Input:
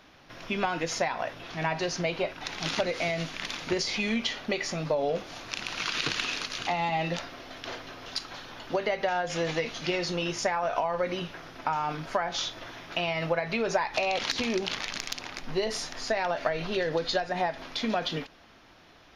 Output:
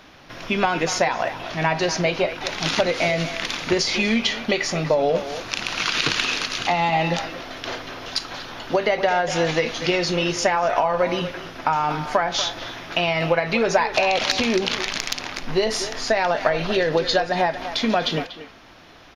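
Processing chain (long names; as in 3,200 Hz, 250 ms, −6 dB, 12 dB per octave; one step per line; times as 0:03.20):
far-end echo of a speakerphone 240 ms, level −11 dB
level +8 dB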